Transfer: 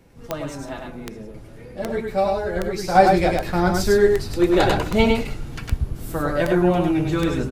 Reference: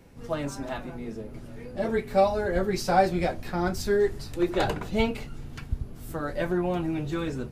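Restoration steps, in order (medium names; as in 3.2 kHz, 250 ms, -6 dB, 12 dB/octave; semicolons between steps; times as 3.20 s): de-click; inverse comb 102 ms -3.5 dB; trim 0 dB, from 2.95 s -7 dB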